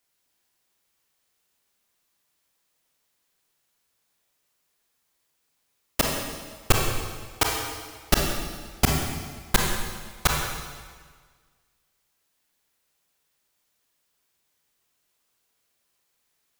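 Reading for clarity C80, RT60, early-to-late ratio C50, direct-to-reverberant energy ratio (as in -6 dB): 3.0 dB, 1.6 s, 1.0 dB, -0.5 dB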